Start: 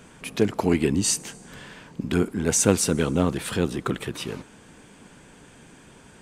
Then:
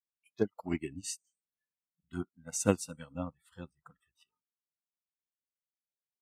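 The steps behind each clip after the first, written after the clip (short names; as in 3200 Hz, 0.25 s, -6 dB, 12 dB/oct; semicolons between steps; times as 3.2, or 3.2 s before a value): bell 2400 Hz +3.5 dB 0.34 oct; spectral noise reduction 29 dB; upward expander 2.5:1, over -36 dBFS; gain -5.5 dB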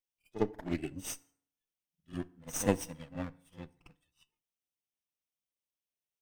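minimum comb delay 0.33 ms; pre-echo 52 ms -14 dB; FDN reverb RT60 0.59 s, low-frequency decay 1×, high-frequency decay 0.7×, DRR 16.5 dB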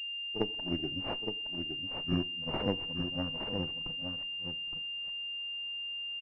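recorder AGC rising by 16 dB/s; echo 0.867 s -6.5 dB; pulse-width modulation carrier 2800 Hz; gain -4.5 dB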